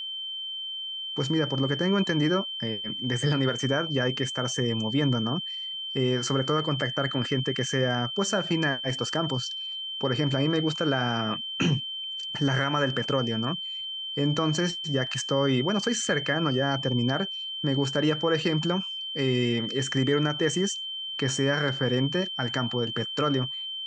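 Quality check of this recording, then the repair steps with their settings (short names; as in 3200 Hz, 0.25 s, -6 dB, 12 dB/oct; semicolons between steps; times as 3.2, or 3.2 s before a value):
tone 3100 Hz -32 dBFS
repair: notch 3100 Hz, Q 30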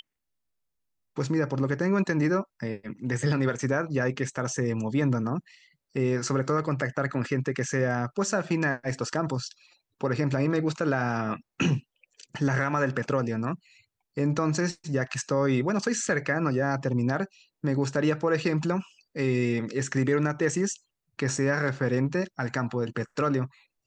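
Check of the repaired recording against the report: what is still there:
none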